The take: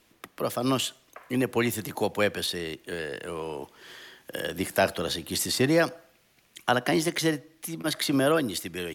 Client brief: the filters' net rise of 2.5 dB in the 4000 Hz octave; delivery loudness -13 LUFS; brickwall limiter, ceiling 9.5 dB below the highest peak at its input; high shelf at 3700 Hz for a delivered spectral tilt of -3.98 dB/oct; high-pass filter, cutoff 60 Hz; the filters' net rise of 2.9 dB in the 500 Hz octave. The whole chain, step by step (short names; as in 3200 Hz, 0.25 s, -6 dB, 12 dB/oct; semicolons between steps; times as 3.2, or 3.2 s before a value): HPF 60 Hz; bell 500 Hz +3.5 dB; high shelf 3700 Hz -4 dB; bell 4000 Hz +5.5 dB; gain +16.5 dB; limiter -1 dBFS